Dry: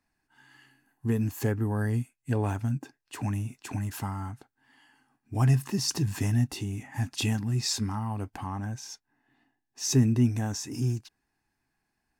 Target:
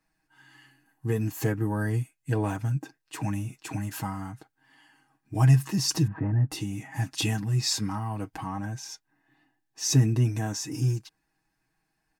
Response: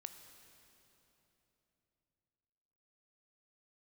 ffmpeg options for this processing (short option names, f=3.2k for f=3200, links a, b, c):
-filter_complex "[0:a]asettb=1/sr,asplit=3[a][b][c];[a]atrim=end=6.074[d];[b]atrim=start=6.07:end=6.51,asetpts=PTS-STARTPTS,afade=t=in:d=0.004:c=qsin,afade=t=out:st=0.436:d=0.004:c=qsin,lowpass=f=1.5k:w=0.5412,lowpass=f=1.5k:w=1.3066[e];[c]atrim=start=6.506[f];[d][e]acrossfade=d=0.004:c1=hsin:c2=qsin[g];[g][f]acrossfade=d=0.004:c1=qsin:c2=hsin,aecho=1:1:6.3:0.81"